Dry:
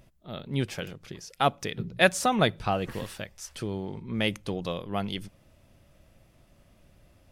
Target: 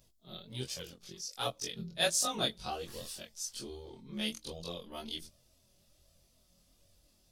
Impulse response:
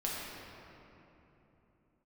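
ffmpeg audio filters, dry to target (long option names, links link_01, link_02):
-af "afftfilt=real='re':imag='-im':win_size=2048:overlap=0.75,flanger=delay=1.6:depth=3.9:regen=38:speed=1.3:shape=sinusoidal,highshelf=frequency=3100:width_type=q:width=1.5:gain=12,volume=-3dB"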